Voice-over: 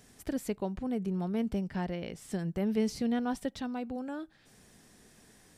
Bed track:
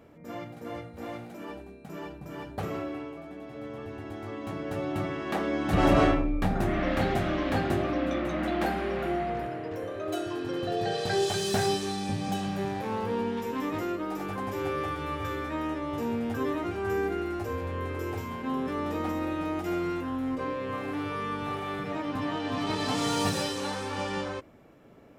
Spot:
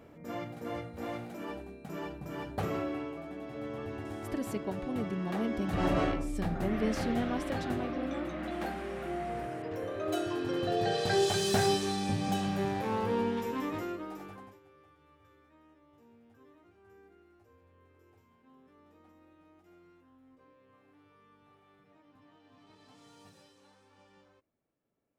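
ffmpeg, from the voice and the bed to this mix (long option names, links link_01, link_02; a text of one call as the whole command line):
ffmpeg -i stem1.wav -i stem2.wav -filter_complex "[0:a]adelay=4050,volume=-2.5dB[link_01];[1:a]volume=7.5dB,afade=type=out:start_time=3.95:duration=0.8:silence=0.398107,afade=type=in:start_time=9.03:duration=1.05:silence=0.421697,afade=type=out:start_time=13.25:duration=1.35:silence=0.0334965[link_02];[link_01][link_02]amix=inputs=2:normalize=0" out.wav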